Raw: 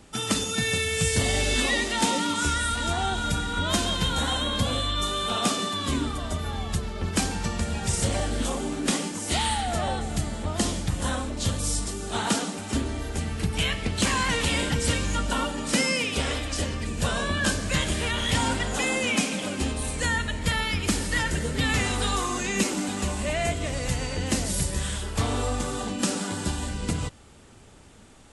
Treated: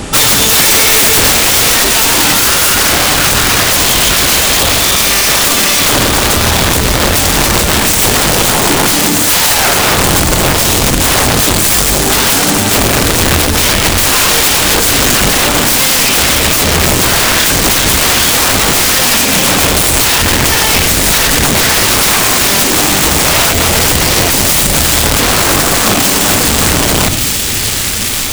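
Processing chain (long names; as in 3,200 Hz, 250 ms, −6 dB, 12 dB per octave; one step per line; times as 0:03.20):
downward compressor 6 to 1, threshold −28 dBFS, peak gain reduction 9.5 dB
wrap-around overflow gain 28.5 dB
delay with a high-pass on its return 1,183 ms, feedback 73%, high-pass 2,100 Hz, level −10.5 dB
on a send at −19 dB: convolution reverb RT60 0.35 s, pre-delay 76 ms
on the sum: boost into a limiter +31 dB
level −1 dB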